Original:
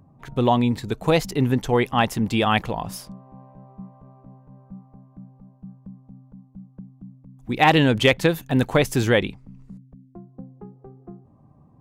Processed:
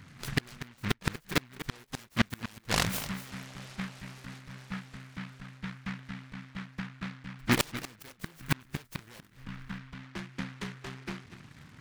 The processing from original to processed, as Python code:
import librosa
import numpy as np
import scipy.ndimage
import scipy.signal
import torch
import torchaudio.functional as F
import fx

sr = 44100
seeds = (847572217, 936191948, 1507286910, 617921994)

y = fx.spec_box(x, sr, start_s=8.24, length_s=0.51, low_hz=410.0, high_hz=1800.0, gain_db=-18)
y = fx.cheby_harmonics(y, sr, harmonics=(3, 5, 8), levels_db=(-43, -28, -29), full_scale_db=-5.0)
y = fx.gate_flip(y, sr, shuts_db=-12.0, range_db=-35)
y = y + 10.0 ** (-13.5 / 20.0) * np.pad(y, (int(241 * sr / 1000.0), 0))[:len(y)]
y = fx.noise_mod_delay(y, sr, seeds[0], noise_hz=1600.0, depth_ms=0.41)